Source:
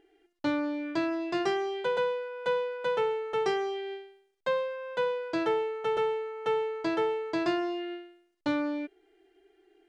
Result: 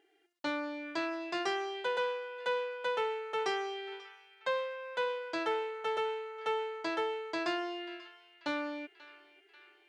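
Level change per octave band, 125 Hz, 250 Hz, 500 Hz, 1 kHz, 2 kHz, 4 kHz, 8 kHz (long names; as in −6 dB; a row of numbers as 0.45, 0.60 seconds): below −15 dB, −9.0 dB, −6.0 dB, −2.5 dB, −1.0 dB, 0.0 dB, can't be measured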